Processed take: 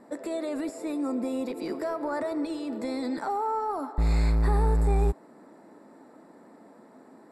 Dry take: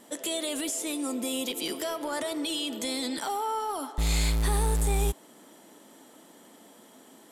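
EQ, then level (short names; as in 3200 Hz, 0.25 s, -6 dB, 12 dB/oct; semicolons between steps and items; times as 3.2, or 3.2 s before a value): running mean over 14 samples; +3.0 dB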